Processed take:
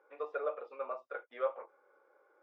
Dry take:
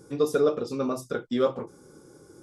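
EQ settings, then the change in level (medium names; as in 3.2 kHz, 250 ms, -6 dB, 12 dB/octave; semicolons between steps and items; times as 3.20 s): Chebyshev band-pass 560–2400 Hz, order 3; -6.0 dB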